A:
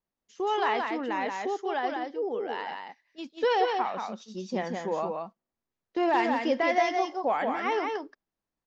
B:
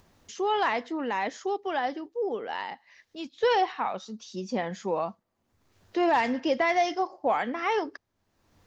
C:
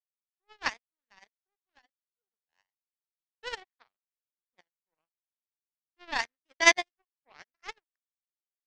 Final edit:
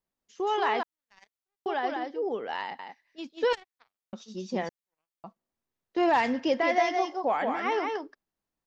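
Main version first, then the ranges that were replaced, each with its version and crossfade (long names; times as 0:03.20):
A
0:00.83–0:01.66: punch in from C
0:02.26–0:02.79: punch in from B
0:03.53–0:04.13: punch in from C
0:04.69–0:05.24: punch in from C
0:05.98–0:06.54: punch in from B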